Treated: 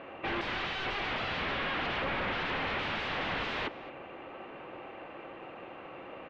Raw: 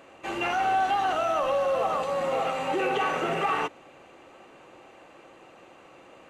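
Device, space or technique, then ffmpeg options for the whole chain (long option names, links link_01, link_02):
synthesiser wavefolder: -filter_complex "[0:a]asplit=3[link_01][link_02][link_03];[link_01]afade=type=out:start_time=0.86:duration=0.02[link_04];[link_02]asubboost=boost=6.5:cutoff=190,afade=type=in:start_time=0.86:duration=0.02,afade=type=out:start_time=2.33:duration=0.02[link_05];[link_03]afade=type=in:start_time=2.33:duration=0.02[link_06];[link_04][link_05][link_06]amix=inputs=3:normalize=0,aeval=exprs='0.0224*(abs(mod(val(0)/0.0224+3,4)-2)-1)':channel_layout=same,lowpass=frequency=3100:width=0.5412,lowpass=frequency=3100:width=1.3066,asplit=2[link_07][link_08];[link_08]adelay=221.6,volume=-17dB,highshelf=frequency=4000:gain=-4.99[link_09];[link_07][link_09]amix=inputs=2:normalize=0,volume=5.5dB"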